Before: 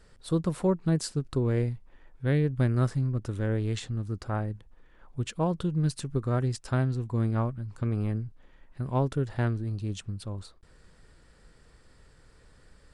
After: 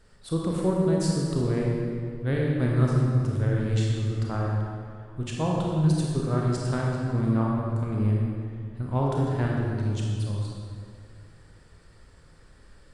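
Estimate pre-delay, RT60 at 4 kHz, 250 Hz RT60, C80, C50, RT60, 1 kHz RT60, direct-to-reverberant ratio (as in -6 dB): 25 ms, 1.6 s, 2.4 s, 0.5 dB, -1.0 dB, 2.2 s, 2.1 s, -2.5 dB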